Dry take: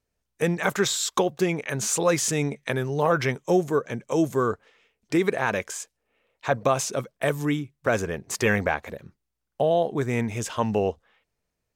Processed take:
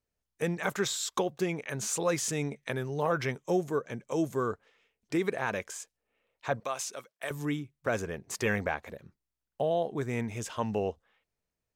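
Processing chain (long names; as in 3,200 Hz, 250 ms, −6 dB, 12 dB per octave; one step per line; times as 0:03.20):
0:06.60–0:07.31: high-pass filter 1,200 Hz 6 dB per octave
level −7 dB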